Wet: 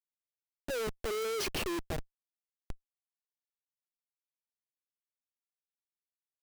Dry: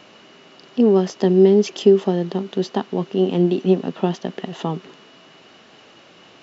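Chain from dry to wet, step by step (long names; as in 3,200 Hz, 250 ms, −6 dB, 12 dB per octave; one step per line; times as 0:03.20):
source passing by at 0:01.40, 50 m/s, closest 3.5 metres
Chebyshev high-pass filter 380 Hz, order 5
low-pass that shuts in the quiet parts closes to 470 Hz, open at −25 dBFS
comparator with hysteresis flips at −42 dBFS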